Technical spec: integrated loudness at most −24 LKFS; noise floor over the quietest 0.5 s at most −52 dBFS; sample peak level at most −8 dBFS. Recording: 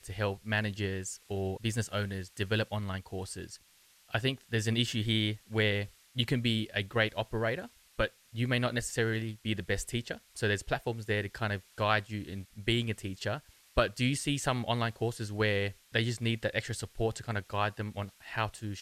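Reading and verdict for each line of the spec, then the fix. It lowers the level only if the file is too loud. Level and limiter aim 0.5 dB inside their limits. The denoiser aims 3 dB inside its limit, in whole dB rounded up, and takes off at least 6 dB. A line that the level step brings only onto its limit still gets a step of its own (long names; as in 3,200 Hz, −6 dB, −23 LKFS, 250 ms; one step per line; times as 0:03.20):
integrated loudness −33.0 LKFS: in spec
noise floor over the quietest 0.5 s −63 dBFS: in spec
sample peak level −11.0 dBFS: in spec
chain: no processing needed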